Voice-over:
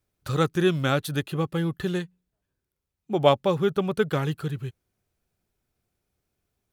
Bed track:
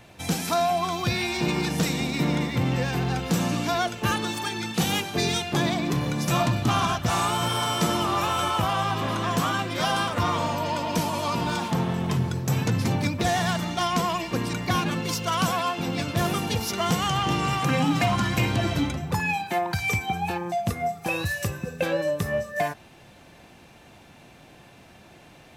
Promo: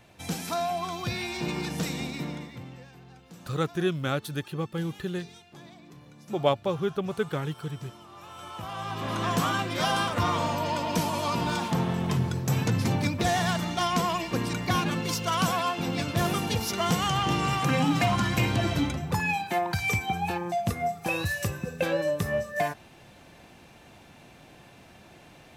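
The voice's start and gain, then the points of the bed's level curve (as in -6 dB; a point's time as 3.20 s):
3.20 s, -5.0 dB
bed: 2.05 s -6 dB
2.96 s -24.5 dB
8.08 s -24.5 dB
9.23 s -1.5 dB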